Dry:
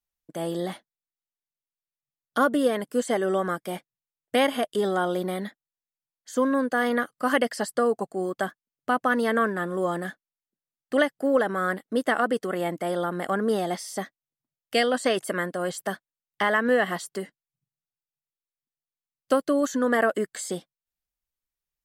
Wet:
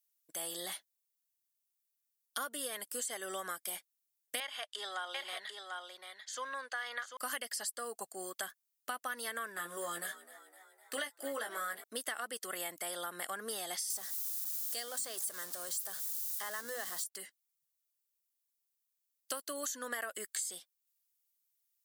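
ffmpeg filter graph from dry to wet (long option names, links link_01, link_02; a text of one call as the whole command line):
ffmpeg -i in.wav -filter_complex "[0:a]asettb=1/sr,asplit=3[link_01][link_02][link_03];[link_01]atrim=end=4.404[link_04];[link_02]atrim=start=4.4:end=7.17,asetpts=PTS-STARTPTS,afade=type=in:duration=0.004:curve=qsin,afade=type=out:start_time=2.766:duration=0.004:curve=qsin,highpass=700,lowpass=4300,aecho=1:1:742:0.473,atrim=end_sample=122157[link_05];[link_03]atrim=start=7.166[link_06];[link_04][link_05]acrossfade=duration=0.004:curve1=hsin:curve2=qsin[link_07];[link_07][link_06]acrossfade=duration=0.004:curve1=qsin:curve2=hsin,asettb=1/sr,asplit=3[link_08][link_09][link_10];[link_08]atrim=end=9.554[link_11];[link_09]atrim=start=9.55:end=11.84,asetpts=PTS-STARTPTS,afade=type=in:duration=0.004:curve=qsin,afade=type=out:start_time=2.286:duration=0.004:curve=qsin,asplit=2[link_12][link_13];[link_13]adelay=18,volume=-4dB[link_14];[link_12][link_14]amix=inputs=2:normalize=0,atrim=end_sample=100989,asplit=6[link_15][link_16][link_17][link_18][link_19][link_20];[link_16]adelay=254,afreqshift=65,volume=-19.5dB[link_21];[link_17]adelay=508,afreqshift=130,volume=-24.1dB[link_22];[link_18]adelay=762,afreqshift=195,volume=-28.7dB[link_23];[link_19]adelay=1016,afreqshift=260,volume=-33.2dB[link_24];[link_20]adelay=1270,afreqshift=325,volume=-37.8dB[link_25];[link_15][link_21][link_22][link_23][link_24][link_25]amix=inputs=6:normalize=0,atrim=end_sample=100989[link_26];[link_10]atrim=start=11.836[link_27];[link_11][link_26]acrossfade=duration=0.004:curve1=hsin:curve2=qsin[link_28];[link_28][link_27]acrossfade=duration=0.004:curve1=qsin:curve2=hsin,asettb=1/sr,asplit=3[link_29][link_30][link_31];[link_29]atrim=end=13.904[link_32];[link_30]atrim=start=13.9:end=17.04,asetpts=PTS-STARTPTS,afade=type=in:duration=0.004:curve=qsin,afade=type=out:start_time=3.136:duration=0.004:curve=qsin,aeval=exprs='val(0)+0.5*0.0355*sgn(val(0))':channel_layout=same,equalizer=frequency=2500:width=1.5:gain=-12,bandreject=frequency=50:width_type=h:width=6,bandreject=frequency=100:width_type=h:width=6,bandreject=frequency=150:width_type=h:width=6,bandreject=frequency=200:width_type=h:width=6,bandreject=frequency=250:width_type=h:width=6,bandreject=frequency=300:width_type=h:width=6[link_33];[link_31]atrim=start=17.036[link_34];[link_32][link_33]acrossfade=duration=0.004:curve1=hsin:curve2=qsin[link_35];[link_35][link_34]acrossfade=duration=0.004:curve1=qsin:curve2=hsin,aderivative,acompressor=threshold=-44dB:ratio=6,volume=8dB" out.wav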